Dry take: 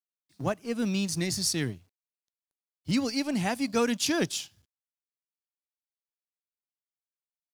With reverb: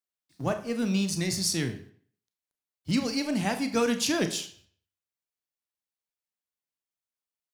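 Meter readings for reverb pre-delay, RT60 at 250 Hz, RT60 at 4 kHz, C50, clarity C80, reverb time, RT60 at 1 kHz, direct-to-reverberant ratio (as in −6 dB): 29 ms, 0.50 s, 0.45 s, 12.0 dB, 15.0 dB, 0.50 s, 0.50 s, 7.0 dB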